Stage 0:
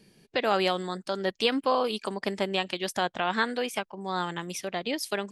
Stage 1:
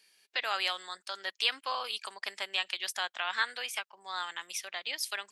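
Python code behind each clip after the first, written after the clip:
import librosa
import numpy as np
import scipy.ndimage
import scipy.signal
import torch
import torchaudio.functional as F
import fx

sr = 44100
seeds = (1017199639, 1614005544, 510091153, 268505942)

y = scipy.signal.sosfilt(scipy.signal.butter(2, 1400.0, 'highpass', fs=sr, output='sos'), x)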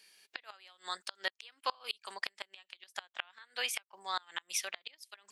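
y = fx.gate_flip(x, sr, shuts_db=-22.0, range_db=-29)
y = F.gain(torch.from_numpy(y), 3.0).numpy()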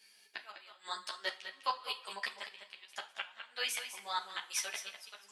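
y = x + 10.0 ** (-9.5 / 20.0) * np.pad(x, (int(203 * sr / 1000.0), 0))[:len(x)]
y = fx.rev_double_slope(y, sr, seeds[0], early_s=0.33, late_s=3.0, knee_db=-21, drr_db=6.5)
y = fx.ensemble(y, sr)
y = F.gain(torch.from_numpy(y), 1.5).numpy()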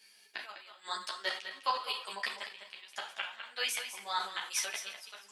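y = fx.sustainer(x, sr, db_per_s=120.0)
y = F.gain(torch.from_numpy(y), 2.0).numpy()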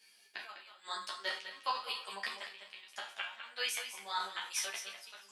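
y = fx.resonator_bank(x, sr, root=39, chord='major', decay_s=0.2)
y = F.gain(torch.from_numpy(y), 6.5).numpy()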